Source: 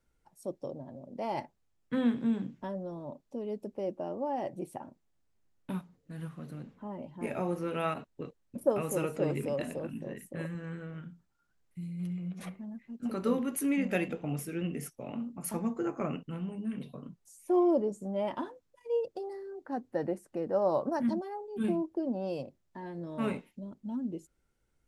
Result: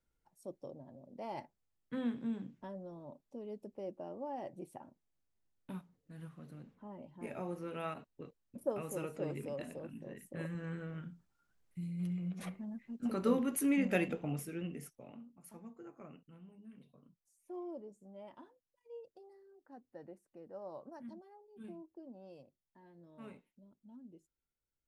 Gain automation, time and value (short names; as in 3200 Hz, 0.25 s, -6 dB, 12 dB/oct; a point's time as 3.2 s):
10.01 s -8.5 dB
10.64 s -1.5 dB
14.11 s -1.5 dB
14.99 s -10.5 dB
15.35 s -19 dB